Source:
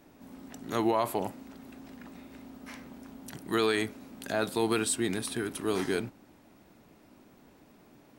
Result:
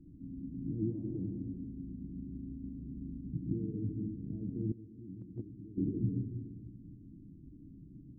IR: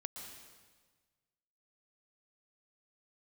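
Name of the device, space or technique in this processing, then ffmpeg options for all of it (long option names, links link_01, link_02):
club heard from the street: -filter_complex "[0:a]alimiter=level_in=1.5dB:limit=-24dB:level=0:latency=1:release=57,volume=-1.5dB,lowpass=frequency=170:width=0.5412,lowpass=frequency=170:width=1.3066[link_01];[1:a]atrim=start_sample=2205[link_02];[link_01][link_02]afir=irnorm=-1:irlink=0,asettb=1/sr,asplit=3[link_03][link_04][link_05];[link_03]atrim=end=4.724[link_06];[link_04]atrim=start=4.72:end=5.78,asetpts=PTS-STARTPTS,afade=type=in:duration=0.004:curve=qsin,afade=type=out:start_time=1.056:duration=0.004:curve=qsin,agate=range=-15dB:threshold=-43dB:ratio=16:detection=peak[link_07];[link_05]atrim=start=5.776[link_08];[link_06][link_07]acrossfade=duration=0.004:curve1=hsin:curve2=qsin[link_09];[link_09][link_08]acrossfade=duration=0.004:curve1=qsin:curve2=hsin,superequalizer=6b=3.55:7b=1.78,volume=15dB"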